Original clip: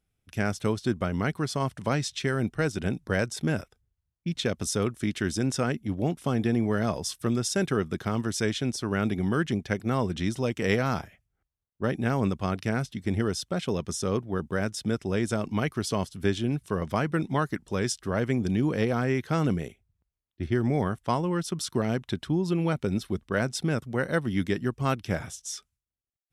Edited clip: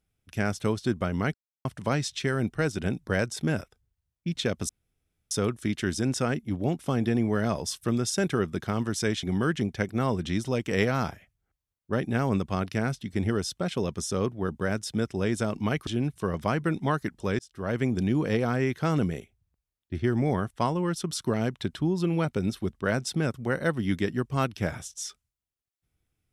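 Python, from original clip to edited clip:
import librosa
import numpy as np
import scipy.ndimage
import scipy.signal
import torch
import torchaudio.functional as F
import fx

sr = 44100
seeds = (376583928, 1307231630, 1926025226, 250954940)

y = fx.edit(x, sr, fx.silence(start_s=1.34, length_s=0.31),
    fx.insert_room_tone(at_s=4.69, length_s=0.62),
    fx.cut(start_s=8.61, length_s=0.53),
    fx.cut(start_s=15.78, length_s=0.57),
    fx.fade_in_span(start_s=17.87, length_s=0.4), tone=tone)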